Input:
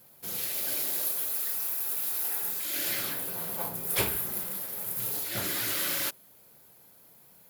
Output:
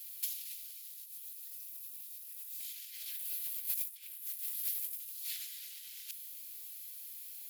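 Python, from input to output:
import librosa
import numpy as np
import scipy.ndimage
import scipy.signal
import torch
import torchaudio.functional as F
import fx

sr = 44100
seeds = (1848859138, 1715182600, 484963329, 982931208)

y = scipy.signal.sosfilt(scipy.signal.cheby2(4, 70, 560.0, 'highpass', fs=sr, output='sos'), x)
y = fx.over_compress(y, sr, threshold_db=-40.0, ratio=-0.5)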